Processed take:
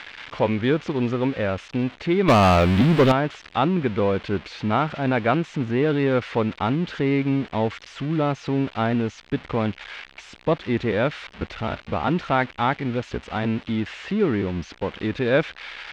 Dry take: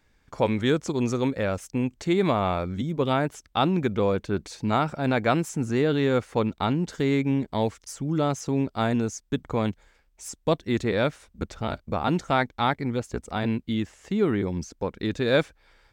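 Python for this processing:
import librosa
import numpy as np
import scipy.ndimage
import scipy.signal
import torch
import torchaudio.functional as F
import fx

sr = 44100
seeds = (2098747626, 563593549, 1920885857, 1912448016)

y = x + 0.5 * 10.0 ** (-17.0 / 20.0) * np.diff(np.sign(x), prepend=np.sign(x[:1]))
y = scipy.signal.sosfilt(scipy.signal.butter(4, 3000.0, 'lowpass', fs=sr, output='sos'), y)
y = fx.leveller(y, sr, passes=3, at=(2.28, 3.12))
y = F.gain(torch.from_numpy(y), 2.0).numpy()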